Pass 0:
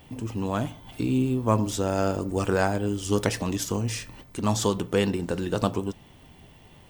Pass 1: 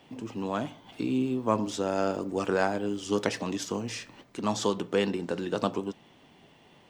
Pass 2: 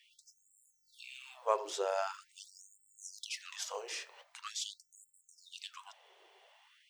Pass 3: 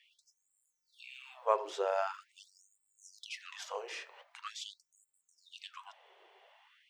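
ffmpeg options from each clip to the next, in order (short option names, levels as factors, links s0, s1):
-filter_complex "[0:a]acrossover=split=160 7000:gain=0.112 1 0.178[s0][s1][s2];[s0][s1][s2]amix=inputs=3:normalize=0,volume=0.794"
-af "afftfilt=real='re*gte(b*sr/1024,340*pow(7200/340,0.5+0.5*sin(2*PI*0.44*pts/sr)))':imag='im*gte(b*sr/1024,340*pow(7200/340,0.5+0.5*sin(2*PI*0.44*pts/sr)))':win_size=1024:overlap=0.75,volume=0.668"
-af "bass=f=250:g=-8,treble=f=4000:g=-12,volume=1.26"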